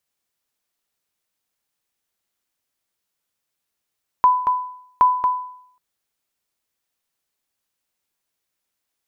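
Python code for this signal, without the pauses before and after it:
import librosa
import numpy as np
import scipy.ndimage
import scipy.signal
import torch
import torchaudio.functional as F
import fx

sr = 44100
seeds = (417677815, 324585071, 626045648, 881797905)

y = fx.sonar_ping(sr, hz=1000.0, decay_s=0.66, every_s=0.77, pings=2, echo_s=0.23, echo_db=-6.5, level_db=-7.0)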